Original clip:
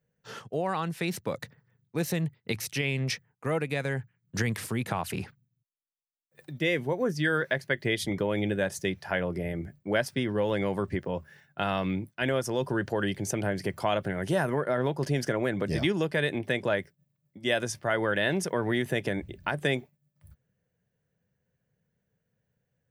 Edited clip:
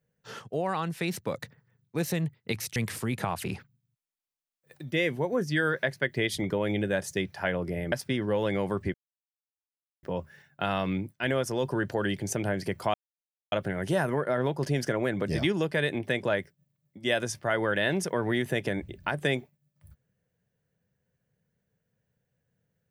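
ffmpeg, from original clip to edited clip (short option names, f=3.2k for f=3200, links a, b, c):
-filter_complex "[0:a]asplit=5[a][b][c][d][e];[a]atrim=end=2.762[f];[b]atrim=start=4.438:end=9.602[g];[c]atrim=start=9.988:end=11.01,asetpts=PTS-STARTPTS,afade=t=out:st=1.018:d=0.004:c=hsin,apad=pad_dur=1.09[h];[d]atrim=start=11.01:end=13.92,asetpts=PTS-STARTPTS,afade=t=in:d=0.004:c=hsin,afade=t=out:st=2.906:d=0.004:c=hsin,apad=pad_dur=0.58[i];[e]atrim=start=13.92,asetpts=PTS-STARTPTS,afade=t=in:d=0.004:c=hsin[j];[f][g]acrossfade=d=0.004:c1=hsin:c2=hsin[k];[h][i][j]concat=n=3:v=0:a=1[l];[k][l]acrossfade=d=0.004:c1=hsin:c2=hsin"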